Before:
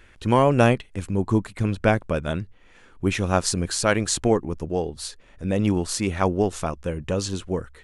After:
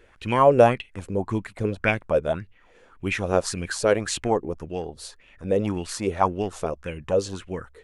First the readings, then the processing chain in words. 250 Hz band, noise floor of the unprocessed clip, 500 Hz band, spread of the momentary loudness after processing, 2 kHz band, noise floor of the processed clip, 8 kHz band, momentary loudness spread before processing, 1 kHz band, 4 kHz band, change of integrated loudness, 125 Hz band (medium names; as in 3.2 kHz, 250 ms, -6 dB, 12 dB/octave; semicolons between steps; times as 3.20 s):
-5.0 dB, -52 dBFS, +1.5 dB, 15 LU, -0.5 dB, -56 dBFS, -5.5 dB, 11 LU, +1.5 dB, -4.0 dB, -1.0 dB, -6.0 dB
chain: sweeping bell 1.8 Hz 430–2800 Hz +15 dB; trim -6 dB